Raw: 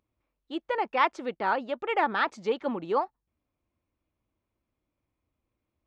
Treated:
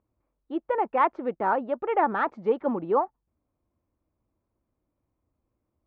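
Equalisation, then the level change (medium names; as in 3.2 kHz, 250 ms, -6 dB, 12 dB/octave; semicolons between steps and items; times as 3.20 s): low-pass 1.2 kHz 12 dB/octave; +4.0 dB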